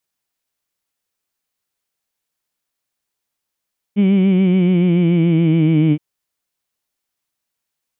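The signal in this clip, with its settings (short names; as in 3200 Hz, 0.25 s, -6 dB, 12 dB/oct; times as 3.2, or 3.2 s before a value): formant-synthesis vowel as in heed, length 2.02 s, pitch 198 Hz, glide -4.5 st, vibrato 7 Hz, vibrato depth 0.65 st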